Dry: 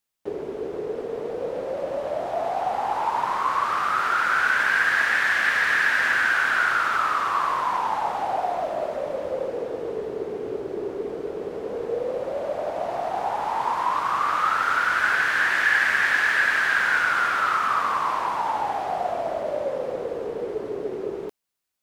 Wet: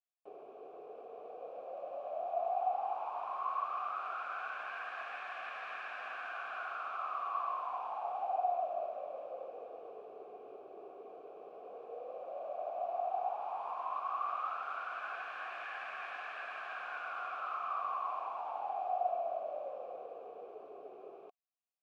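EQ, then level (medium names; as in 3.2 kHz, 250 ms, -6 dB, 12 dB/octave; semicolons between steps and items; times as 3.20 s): vowel filter a; -5.5 dB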